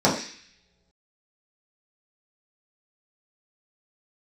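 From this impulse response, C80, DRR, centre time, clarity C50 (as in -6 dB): 10.0 dB, -7.0 dB, 30 ms, 7.0 dB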